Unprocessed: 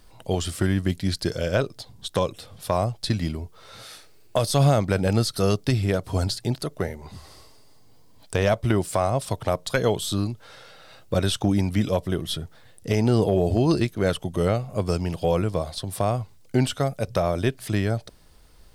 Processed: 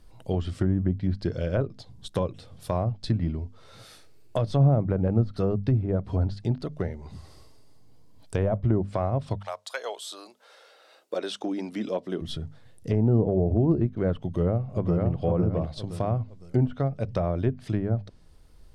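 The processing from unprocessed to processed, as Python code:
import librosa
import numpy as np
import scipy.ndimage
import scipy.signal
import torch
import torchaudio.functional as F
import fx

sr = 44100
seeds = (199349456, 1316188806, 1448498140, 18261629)

y = fx.highpass(x, sr, hz=fx.line((9.37, 760.0), (12.2, 210.0)), slope=24, at=(9.37, 12.2), fade=0.02)
y = fx.echo_throw(y, sr, start_s=14.25, length_s=0.9, ms=510, feedback_pct=30, wet_db=-2.5)
y = fx.low_shelf(y, sr, hz=410.0, db=9.5)
y = fx.env_lowpass_down(y, sr, base_hz=880.0, full_db=-10.0)
y = fx.hum_notches(y, sr, base_hz=50, count=5)
y = F.gain(torch.from_numpy(y), -8.0).numpy()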